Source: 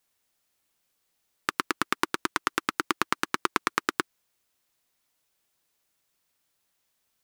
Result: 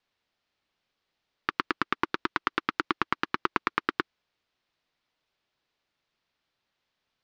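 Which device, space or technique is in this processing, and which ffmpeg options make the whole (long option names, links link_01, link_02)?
synthesiser wavefolder: -af "aeval=exprs='0.501*(abs(mod(val(0)/0.501+3,4)-2)-1)':channel_layout=same,lowpass=frequency=4600:width=0.5412,lowpass=frequency=4600:width=1.3066"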